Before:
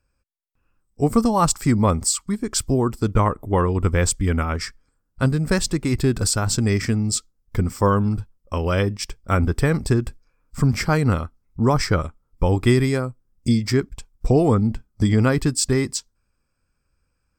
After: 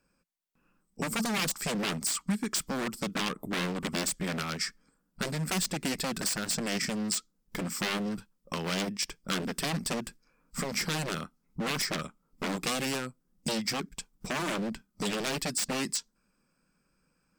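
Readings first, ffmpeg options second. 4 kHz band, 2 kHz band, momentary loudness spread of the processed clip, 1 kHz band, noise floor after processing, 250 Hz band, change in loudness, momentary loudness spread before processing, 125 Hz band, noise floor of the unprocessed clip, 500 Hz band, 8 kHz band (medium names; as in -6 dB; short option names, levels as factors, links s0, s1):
-2.0 dB, -5.0 dB, 8 LU, -11.5 dB, -76 dBFS, -12.5 dB, -11.0 dB, 9 LU, -19.0 dB, -72 dBFS, -14.0 dB, -7.0 dB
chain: -filter_complex "[0:a]aeval=exprs='0.112*(abs(mod(val(0)/0.112+3,4)-2)-1)':c=same,acrossover=split=1300|2600[s0][s1][s2];[s0]acompressor=threshold=0.0126:ratio=4[s3];[s1]acompressor=threshold=0.00708:ratio=4[s4];[s2]acompressor=threshold=0.0251:ratio=4[s5];[s3][s4][s5]amix=inputs=3:normalize=0,lowshelf=f=130:t=q:w=3:g=-10.5,volume=1.26"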